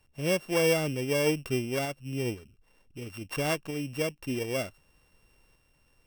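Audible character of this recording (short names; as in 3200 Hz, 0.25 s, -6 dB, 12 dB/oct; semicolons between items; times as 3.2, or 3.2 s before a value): a buzz of ramps at a fixed pitch in blocks of 16 samples; tremolo saw up 0.54 Hz, depth 35%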